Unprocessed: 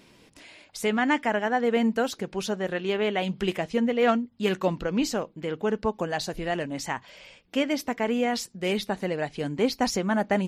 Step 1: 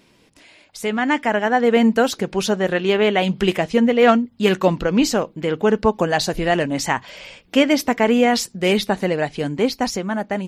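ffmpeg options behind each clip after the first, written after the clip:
-af "dynaudnorm=f=190:g=13:m=3.76"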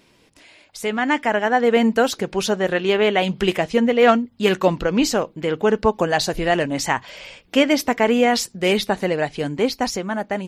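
-af "equalizer=f=200:w=1.4:g=-3"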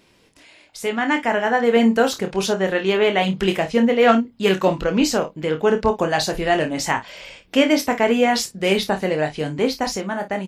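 -af "aecho=1:1:26|53:0.447|0.2,volume=0.891"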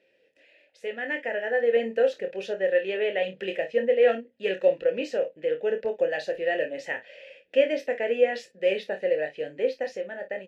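-filter_complex "[0:a]asplit=3[s0][s1][s2];[s0]bandpass=f=530:t=q:w=8,volume=1[s3];[s1]bandpass=f=1840:t=q:w=8,volume=0.501[s4];[s2]bandpass=f=2480:t=q:w=8,volume=0.355[s5];[s3][s4][s5]amix=inputs=3:normalize=0,volume=1.26"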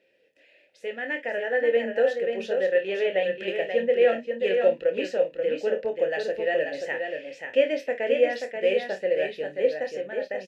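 -af "aecho=1:1:533:0.531"

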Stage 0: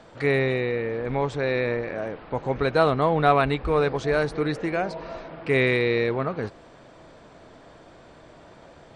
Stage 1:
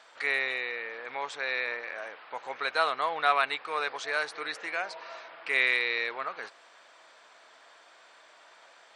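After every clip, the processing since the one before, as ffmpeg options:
-af "highpass=1200,volume=1.12"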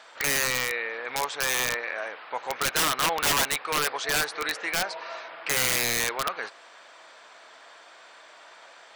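-af "aeval=exprs='(mod(14.1*val(0)+1,2)-1)/14.1':c=same,volume=2"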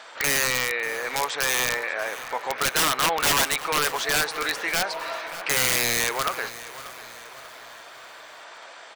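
-filter_complex "[0:a]asplit=2[s0][s1];[s1]alimiter=level_in=1.33:limit=0.0631:level=0:latency=1:release=109,volume=0.75,volume=0.944[s2];[s0][s2]amix=inputs=2:normalize=0,aecho=1:1:588|1176|1764|2352:0.158|0.0761|0.0365|0.0175"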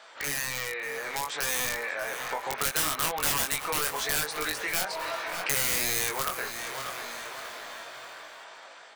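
-filter_complex "[0:a]dynaudnorm=f=600:g=5:m=3.76,flanger=delay=19.5:depth=3.2:speed=0.67,acrossover=split=160|7900[s0][s1][s2];[s0]acompressor=threshold=0.0112:ratio=4[s3];[s1]acompressor=threshold=0.0447:ratio=4[s4];[s2]acompressor=threshold=0.0794:ratio=4[s5];[s3][s4][s5]amix=inputs=3:normalize=0,volume=0.668"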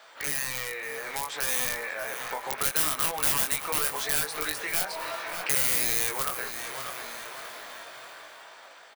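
-filter_complex "[0:a]acrossover=split=1800[s0][s1];[s0]acrusher=bits=4:mode=log:mix=0:aa=0.000001[s2];[s2][s1]amix=inputs=2:normalize=0,aecho=1:1:147:0.075,aexciter=amount=1.5:drive=5.5:freq=9600,volume=0.841"

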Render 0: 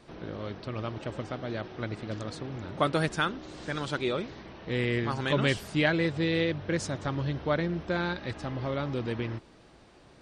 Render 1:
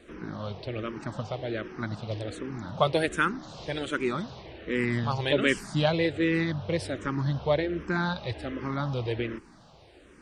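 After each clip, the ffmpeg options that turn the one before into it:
-filter_complex "[0:a]asplit=2[s0][s1];[s1]afreqshift=-1.3[s2];[s0][s2]amix=inputs=2:normalize=1,volume=1.68"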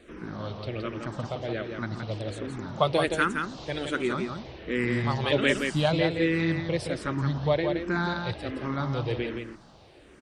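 -af "aecho=1:1:170:0.531"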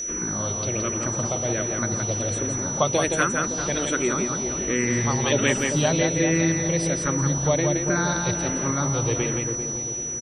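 -filter_complex "[0:a]acompressor=threshold=0.0112:ratio=1.5,aeval=exprs='val(0)+0.0158*sin(2*PI*5900*n/s)':c=same,asplit=2[s0][s1];[s1]adelay=394,lowpass=f=810:p=1,volume=0.501,asplit=2[s2][s3];[s3]adelay=394,lowpass=f=810:p=1,volume=0.47,asplit=2[s4][s5];[s5]adelay=394,lowpass=f=810:p=1,volume=0.47,asplit=2[s6][s7];[s7]adelay=394,lowpass=f=810:p=1,volume=0.47,asplit=2[s8][s9];[s9]adelay=394,lowpass=f=810:p=1,volume=0.47,asplit=2[s10][s11];[s11]adelay=394,lowpass=f=810:p=1,volume=0.47[s12];[s0][s2][s4][s6][s8][s10][s12]amix=inputs=7:normalize=0,volume=2.66"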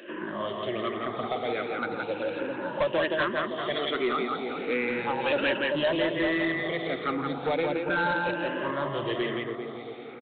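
-af "afftfilt=real='re*pow(10,12/40*sin(2*PI*(1.3*log(max(b,1)*sr/1024/100)/log(2)-(0.35)*(pts-256)/sr)))':imag='im*pow(10,12/40*sin(2*PI*(1.3*log(max(b,1)*sr/1024/100)/log(2)-(0.35)*(pts-256)/sr)))':win_size=1024:overlap=0.75,highpass=340,aresample=8000,asoftclip=type=tanh:threshold=0.0944,aresample=44100"

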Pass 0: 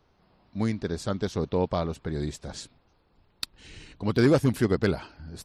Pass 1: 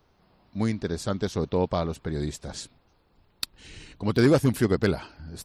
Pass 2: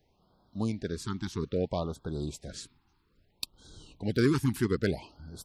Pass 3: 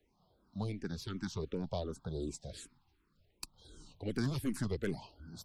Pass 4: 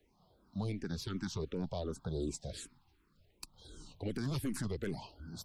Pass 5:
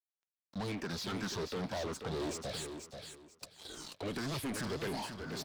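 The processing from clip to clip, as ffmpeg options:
-af "highshelf=f=10000:g=7,volume=1.12"
-af "afftfilt=real='re*(1-between(b*sr/1024,540*pow(2300/540,0.5+0.5*sin(2*PI*0.61*pts/sr))/1.41,540*pow(2300/540,0.5+0.5*sin(2*PI*0.61*pts/sr))*1.41))':imag='im*(1-between(b*sr/1024,540*pow(2300/540,0.5+0.5*sin(2*PI*0.61*pts/sr))/1.41,540*pow(2300/540,0.5+0.5*sin(2*PI*0.61*pts/sr))*1.41))':win_size=1024:overlap=0.75,volume=0.562"
-filter_complex "[0:a]aeval=exprs='0.188*(cos(1*acos(clip(val(0)/0.188,-1,1)))-cos(1*PI/2))+0.0211*(cos(4*acos(clip(val(0)/0.188,-1,1)))-cos(4*PI/2))+0.0119*(cos(5*acos(clip(val(0)/0.188,-1,1)))-cos(5*PI/2))':c=same,acrossover=split=240|3000[s0][s1][s2];[s1]acompressor=threshold=0.0316:ratio=6[s3];[s0][s3][s2]amix=inputs=3:normalize=0,asplit=2[s4][s5];[s5]afreqshift=-2.7[s6];[s4][s6]amix=inputs=2:normalize=1,volume=0.668"
-af "alimiter=level_in=2.24:limit=0.0631:level=0:latency=1:release=72,volume=0.447,volume=1.41"
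-filter_complex "[0:a]aeval=exprs='sgn(val(0))*max(abs(val(0))-0.00133,0)':c=same,asplit=2[s0][s1];[s1]highpass=f=720:p=1,volume=22.4,asoftclip=type=tanh:threshold=0.0398[s2];[s0][s2]amix=inputs=2:normalize=0,lowpass=f=4800:p=1,volume=0.501,aecho=1:1:486|972|1458:0.422|0.101|0.0243,volume=0.708"

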